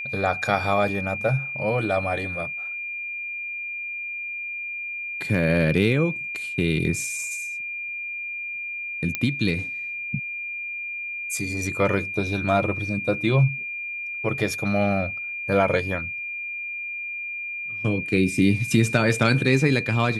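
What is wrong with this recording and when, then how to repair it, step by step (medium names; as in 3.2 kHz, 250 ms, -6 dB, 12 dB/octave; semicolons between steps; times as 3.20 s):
whine 2.4 kHz -29 dBFS
9.15 s: pop -9 dBFS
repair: de-click; band-stop 2.4 kHz, Q 30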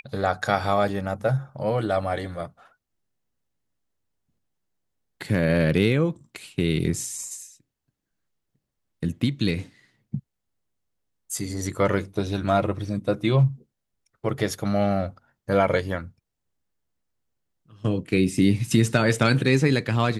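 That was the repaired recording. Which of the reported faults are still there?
nothing left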